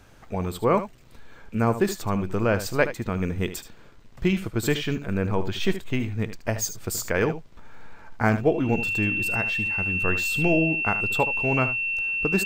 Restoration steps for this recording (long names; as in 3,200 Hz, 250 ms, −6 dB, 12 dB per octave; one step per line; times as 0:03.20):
notch filter 2,700 Hz, Q 30
echo removal 75 ms −12 dB